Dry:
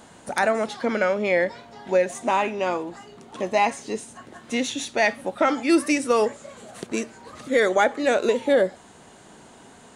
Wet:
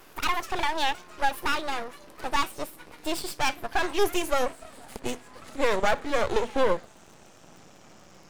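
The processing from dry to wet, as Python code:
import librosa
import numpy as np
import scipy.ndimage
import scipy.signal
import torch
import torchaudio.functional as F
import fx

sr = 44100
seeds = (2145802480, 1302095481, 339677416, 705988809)

y = fx.speed_glide(x, sr, from_pct=164, to_pct=76)
y = fx.dmg_crackle(y, sr, seeds[0], per_s=34.0, level_db=-40.0)
y = np.maximum(y, 0.0)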